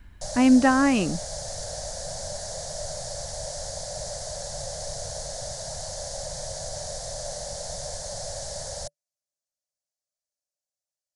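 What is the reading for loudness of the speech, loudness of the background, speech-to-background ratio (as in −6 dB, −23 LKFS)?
−20.5 LKFS, −33.5 LKFS, 13.0 dB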